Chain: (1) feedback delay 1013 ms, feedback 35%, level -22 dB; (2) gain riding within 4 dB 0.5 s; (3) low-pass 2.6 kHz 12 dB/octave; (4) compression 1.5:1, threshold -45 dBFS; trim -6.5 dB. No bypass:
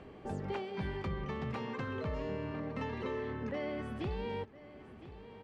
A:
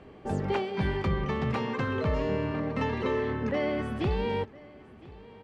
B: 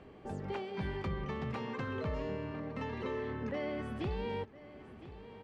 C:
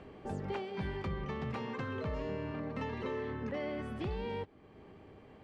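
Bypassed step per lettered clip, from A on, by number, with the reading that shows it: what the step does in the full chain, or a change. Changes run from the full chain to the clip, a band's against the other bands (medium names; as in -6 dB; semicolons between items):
4, mean gain reduction 6.5 dB; 2, crest factor change -2.0 dB; 1, momentary loudness spread change +4 LU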